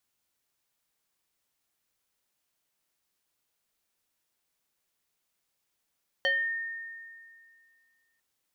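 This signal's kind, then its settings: FM tone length 1.95 s, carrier 1830 Hz, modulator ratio 0.7, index 1.3, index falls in 0.36 s exponential, decay 2.20 s, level -22 dB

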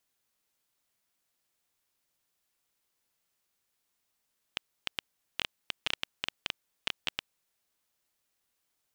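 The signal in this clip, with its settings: random clicks 7.5/s -12 dBFS 3.13 s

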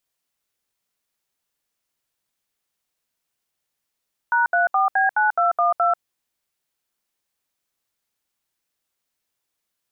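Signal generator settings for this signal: DTMF "#34B9212", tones 0.14 s, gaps 71 ms, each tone -18 dBFS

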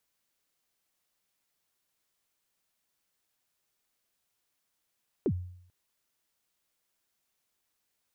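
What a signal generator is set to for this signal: kick drum length 0.44 s, from 460 Hz, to 90 Hz, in 63 ms, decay 0.67 s, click off, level -22 dB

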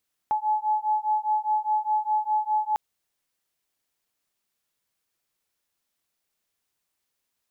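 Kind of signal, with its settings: beating tones 853 Hz, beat 4.9 Hz, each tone -25 dBFS 2.45 s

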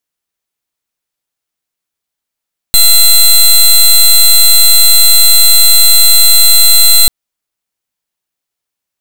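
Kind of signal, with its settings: pulse 4070 Hz, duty 17% -4 dBFS 4.34 s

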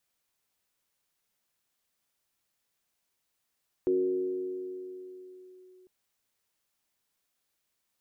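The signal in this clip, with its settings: FM tone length 2.00 s, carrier 369 Hz, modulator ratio 0.26, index 0.53, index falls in 1.97 s linear, decay 3.63 s, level -22 dB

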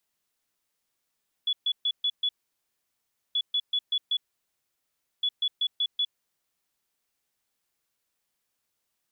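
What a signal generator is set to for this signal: beep pattern sine 3410 Hz, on 0.06 s, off 0.13 s, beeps 5, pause 1.06 s, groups 3, -22.5 dBFS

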